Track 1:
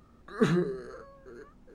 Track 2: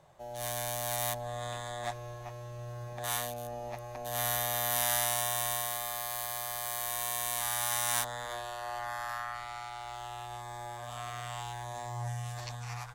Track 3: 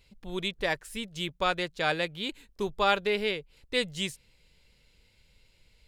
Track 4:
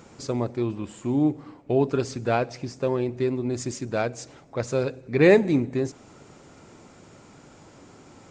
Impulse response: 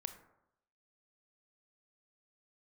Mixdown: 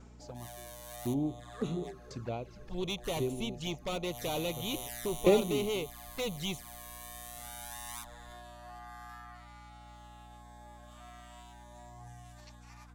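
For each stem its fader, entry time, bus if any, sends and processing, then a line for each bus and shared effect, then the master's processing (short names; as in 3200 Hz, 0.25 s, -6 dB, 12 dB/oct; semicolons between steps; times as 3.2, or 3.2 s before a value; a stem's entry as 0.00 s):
-9.5 dB, 1.20 s, no send, dry
-7.0 dB, 0.00 s, no send, low shelf 110 Hz -2.5 dB; resonator 80 Hz, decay 1.5 s, harmonics odd, mix 30%
+1.5 dB, 2.45 s, no send, high shelf 8700 Hz -11 dB; overloaded stage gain 31 dB
-6.0 dB, 0.00 s, no send, low shelf 67 Hz +10 dB; dB-ramp tremolo decaying 0.95 Hz, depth 34 dB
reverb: off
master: envelope flanger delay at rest 6 ms, full sweep at -32.5 dBFS; hum 60 Hz, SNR 17 dB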